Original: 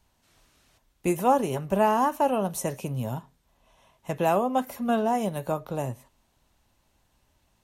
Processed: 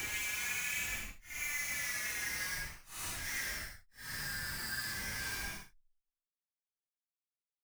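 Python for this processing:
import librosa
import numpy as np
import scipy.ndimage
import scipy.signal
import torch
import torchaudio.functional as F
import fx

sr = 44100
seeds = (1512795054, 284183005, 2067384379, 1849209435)

p1 = fx.band_shuffle(x, sr, order='4123')
p2 = fx.step_gate(p1, sr, bpm=174, pattern='.xxxx.xx', floor_db=-12.0, edge_ms=4.5)
p3 = p2 + fx.room_flutter(p2, sr, wall_m=5.3, rt60_s=0.22, dry=0)
p4 = fx.schmitt(p3, sr, flips_db=-29.5)
p5 = fx.tone_stack(p4, sr, knobs='5-5-5')
y = fx.paulstretch(p5, sr, seeds[0], factor=4.2, window_s=0.1, from_s=1.87)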